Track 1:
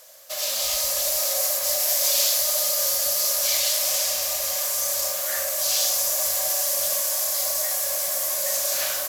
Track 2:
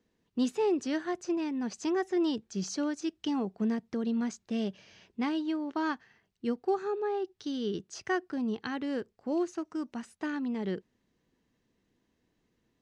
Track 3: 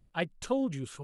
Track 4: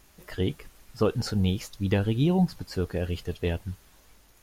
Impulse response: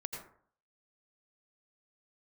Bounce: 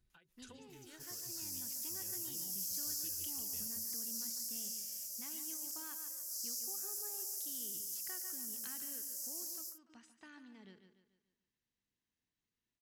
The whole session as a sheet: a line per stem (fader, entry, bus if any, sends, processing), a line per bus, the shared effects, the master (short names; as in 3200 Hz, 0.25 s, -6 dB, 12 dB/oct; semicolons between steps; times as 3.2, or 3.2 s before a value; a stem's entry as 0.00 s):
-12.0 dB, 0.70 s, no bus, no send, no echo send, Chebyshev band-stop 520–5100 Hz, order 4
-4.5 dB, 0.00 s, bus A, send -16.5 dB, echo send -11.5 dB, dry
+1.0 dB, 0.00 s, bus A, no send, no echo send, small resonant body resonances 380/1500/3800 Hz, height 13 dB
-15.5 dB, 0.10 s, bus A, send -6.5 dB, no echo send, compressor, threshold -25 dBFS, peak gain reduction 7 dB
bus A: 0.0 dB, compressor 6:1, threshold -37 dBFS, peak gain reduction 15.5 dB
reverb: on, RT60 0.55 s, pre-delay 77 ms
echo: feedback echo 0.145 s, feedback 43%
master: passive tone stack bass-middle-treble 5-5-5; ending taper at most 150 dB/s